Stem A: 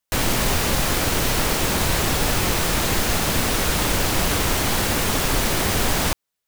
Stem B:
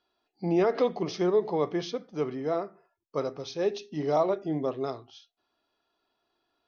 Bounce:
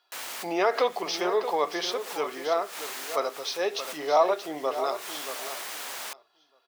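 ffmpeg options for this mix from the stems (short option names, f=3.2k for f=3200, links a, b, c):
-filter_complex "[0:a]volume=-13dB[a];[1:a]acontrast=80,volume=2dB,asplit=3[b][c][d];[c]volume=-10.5dB[e];[d]apad=whole_len=285374[f];[a][f]sidechaincompress=threshold=-38dB:ratio=5:attack=47:release=114[g];[e]aecho=0:1:627|1254|1881:1|0.2|0.04[h];[g][b][h]amix=inputs=3:normalize=0,highpass=780"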